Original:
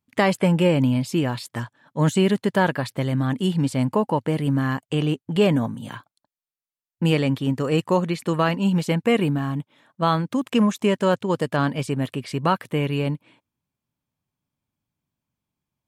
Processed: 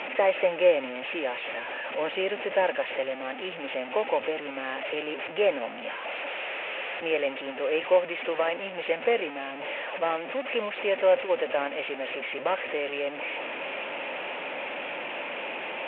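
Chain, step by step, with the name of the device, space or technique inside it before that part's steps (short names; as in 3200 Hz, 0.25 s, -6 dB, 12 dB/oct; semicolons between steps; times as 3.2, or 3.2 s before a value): digital answering machine (BPF 370–3100 Hz; delta modulation 16 kbps, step -25 dBFS; speaker cabinet 460–4400 Hz, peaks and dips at 540 Hz +8 dB, 1100 Hz -8 dB, 1500 Hz -4 dB, 2600 Hz +6 dB, 4100 Hz -9 dB); gain -2 dB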